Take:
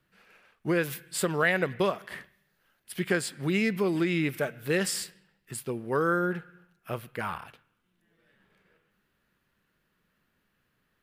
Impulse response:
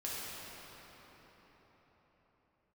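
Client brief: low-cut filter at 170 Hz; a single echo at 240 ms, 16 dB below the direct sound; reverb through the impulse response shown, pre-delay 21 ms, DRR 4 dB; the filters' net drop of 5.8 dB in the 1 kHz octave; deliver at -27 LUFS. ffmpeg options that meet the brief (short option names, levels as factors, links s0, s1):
-filter_complex "[0:a]highpass=170,equalizer=f=1000:t=o:g=-8.5,aecho=1:1:240:0.158,asplit=2[s0][s1];[1:a]atrim=start_sample=2205,adelay=21[s2];[s1][s2]afir=irnorm=-1:irlink=0,volume=0.447[s3];[s0][s3]amix=inputs=2:normalize=0,volume=1.5"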